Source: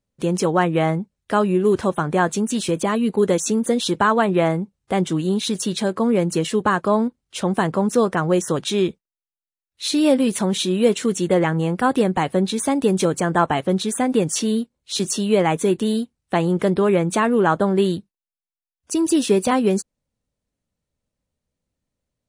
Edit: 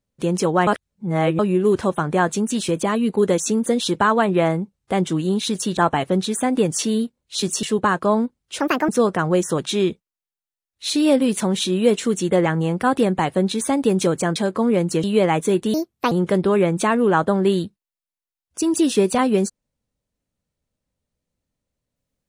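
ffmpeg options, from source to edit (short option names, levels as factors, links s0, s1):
-filter_complex "[0:a]asplit=11[s0][s1][s2][s3][s4][s5][s6][s7][s8][s9][s10];[s0]atrim=end=0.672[s11];[s1]atrim=start=0.668:end=1.392,asetpts=PTS-STARTPTS,areverse[s12];[s2]atrim=start=1.388:end=5.772[s13];[s3]atrim=start=13.338:end=15.202[s14];[s4]atrim=start=6.448:end=7.424[s15];[s5]atrim=start=7.42:end=7.87,asetpts=PTS-STARTPTS,asetrate=69237,aresample=44100,atrim=end_sample=12640,asetpts=PTS-STARTPTS[s16];[s6]atrim=start=7.866:end=13.342[s17];[s7]atrim=start=5.768:end=6.452[s18];[s8]atrim=start=15.198:end=15.904[s19];[s9]atrim=start=15.9:end=16.44,asetpts=PTS-STARTPTS,asetrate=63063,aresample=44100,atrim=end_sample=16653,asetpts=PTS-STARTPTS[s20];[s10]atrim=start=16.436[s21];[s11][s12]acrossfade=d=0.004:c1=hsin:c2=hsin[s22];[s22][s13]acrossfade=d=0.004:c1=hsin:c2=hsin[s23];[s23][s14]acrossfade=d=0.004:c1=hsin:c2=hsin[s24];[s24][s15]acrossfade=d=0.004:c1=hsin:c2=hsin[s25];[s25][s16]acrossfade=d=0.004:c1=hsin:c2=hsin[s26];[s26][s17]acrossfade=d=0.004:c1=hsin:c2=hsin[s27];[s27][s18]acrossfade=d=0.004:c1=hsin:c2=hsin[s28];[s28][s19]acrossfade=d=0.004:c1=hsin:c2=hsin[s29];[s29][s20]acrossfade=d=0.004:c1=hsin:c2=hsin[s30];[s30][s21]acrossfade=d=0.004:c1=hsin:c2=hsin"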